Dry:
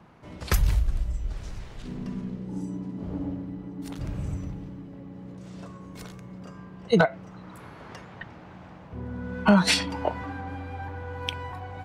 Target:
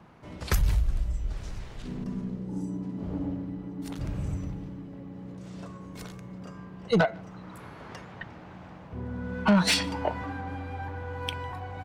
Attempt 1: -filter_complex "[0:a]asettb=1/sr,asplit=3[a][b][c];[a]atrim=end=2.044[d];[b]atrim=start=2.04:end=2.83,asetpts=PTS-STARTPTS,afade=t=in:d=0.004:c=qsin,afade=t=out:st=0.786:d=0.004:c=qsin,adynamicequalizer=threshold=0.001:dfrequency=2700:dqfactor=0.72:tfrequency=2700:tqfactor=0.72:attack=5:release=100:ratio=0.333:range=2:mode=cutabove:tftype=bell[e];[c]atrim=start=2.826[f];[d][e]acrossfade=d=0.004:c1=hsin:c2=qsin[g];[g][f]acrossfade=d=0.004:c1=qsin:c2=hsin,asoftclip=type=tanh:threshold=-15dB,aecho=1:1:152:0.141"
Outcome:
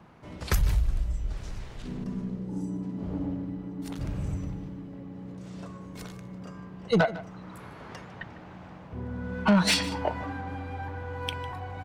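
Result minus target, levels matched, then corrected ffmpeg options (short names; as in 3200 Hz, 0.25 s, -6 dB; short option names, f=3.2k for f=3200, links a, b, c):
echo-to-direct +11 dB
-filter_complex "[0:a]asettb=1/sr,asplit=3[a][b][c];[a]atrim=end=2.044[d];[b]atrim=start=2.04:end=2.83,asetpts=PTS-STARTPTS,afade=t=in:d=0.004:c=qsin,afade=t=out:st=0.786:d=0.004:c=qsin,adynamicequalizer=threshold=0.001:dfrequency=2700:dqfactor=0.72:tfrequency=2700:tqfactor=0.72:attack=5:release=100:ratio=0.333:range=2:mode=cutabove:tftype=bell[e];[c]atrim=start=2.826[f];[d][e]acrossfade=d=0.004:c1=hsin:c2=qsin[g];[g][f]acrossfade=d=0.004:c1=qsin:c2=hsin,asoftclip=type=tanh:threshold=-15dB,aecho=1:1:152:0.0398"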